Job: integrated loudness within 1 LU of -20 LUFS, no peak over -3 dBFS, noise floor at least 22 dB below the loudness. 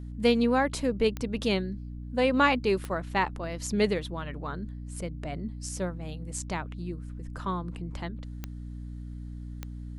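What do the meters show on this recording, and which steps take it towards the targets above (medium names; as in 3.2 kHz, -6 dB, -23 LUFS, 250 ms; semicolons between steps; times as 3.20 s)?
clicks found 4; hum 60 Hz; highest harmonic 300 Hz; hum level -36 dBFS; loudness -29.5 LUFS; peak level -10.0 dBFS; loudness target -20.0 LUFS
-> de-click; de-hum 60 Hz, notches 5; trim +9.5 dB; peak limiter -3 dBFS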